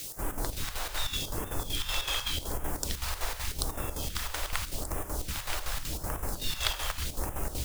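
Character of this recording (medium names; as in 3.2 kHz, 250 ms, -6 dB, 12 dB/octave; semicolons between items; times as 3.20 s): a quantiser's noise floor 6-bit, dither triangular; phasing stages 2, 0.85 Hz, lowest notch 180–4000 Hz; chopped level 5.3 Hz, depth 60%, duty 65%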